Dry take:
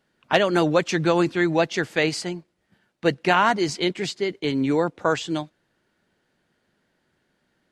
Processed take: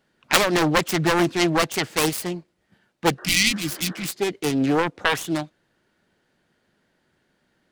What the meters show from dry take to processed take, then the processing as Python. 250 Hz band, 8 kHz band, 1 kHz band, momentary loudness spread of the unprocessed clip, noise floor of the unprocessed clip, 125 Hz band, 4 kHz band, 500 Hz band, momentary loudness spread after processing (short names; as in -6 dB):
0.0 dB, +10.0 dB, -1.0 dB, 10 LU, -72 dBFS, +1.0 dB, +5.0 dB, -2.5 dB, 9 LU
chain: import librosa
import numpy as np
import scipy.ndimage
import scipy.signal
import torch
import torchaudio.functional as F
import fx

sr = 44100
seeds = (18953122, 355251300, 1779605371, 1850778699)

y = fx.self_delay(x, sr, depth_ms=1.0)
y = fx.spec_repair(y, sr, seeds[0], start_s=3.21, length_s=0.82, low_hz=330.0, high_hz=1900.0, source='after')
y = y * 10.0 ** (2.0 / 20.0)